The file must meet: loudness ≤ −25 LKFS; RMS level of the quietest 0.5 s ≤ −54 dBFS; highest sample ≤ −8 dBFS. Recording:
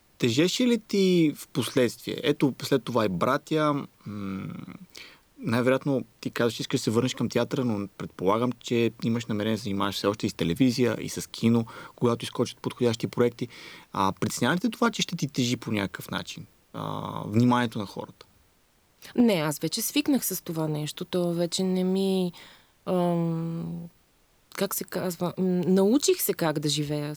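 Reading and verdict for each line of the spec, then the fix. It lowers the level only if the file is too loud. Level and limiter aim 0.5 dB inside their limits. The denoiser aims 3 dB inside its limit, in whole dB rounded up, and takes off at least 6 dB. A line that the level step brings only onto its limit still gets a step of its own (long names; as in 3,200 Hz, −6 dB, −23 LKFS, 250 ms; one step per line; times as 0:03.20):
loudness −26.5 LKFS: in spec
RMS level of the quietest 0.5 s −64 dBFS: in spec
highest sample −10.0 dBFS: in spec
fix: no processing needed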